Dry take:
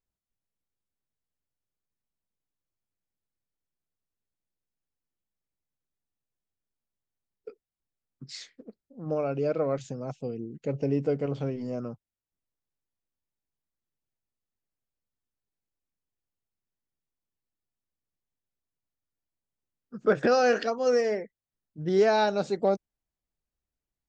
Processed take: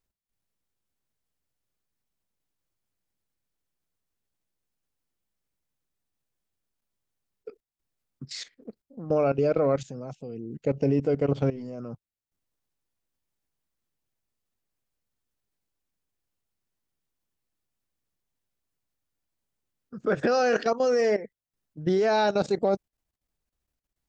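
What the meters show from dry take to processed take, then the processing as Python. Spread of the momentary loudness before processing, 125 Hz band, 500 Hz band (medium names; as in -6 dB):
19 LU, +3.5 dB, +1.5 dB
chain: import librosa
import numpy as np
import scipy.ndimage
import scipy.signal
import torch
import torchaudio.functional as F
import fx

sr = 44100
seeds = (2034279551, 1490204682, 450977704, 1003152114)

y = fx.level_steps(x, sr, step_db=15)
y = F.gain(torch.from_numpy(y), 8.0).numpy()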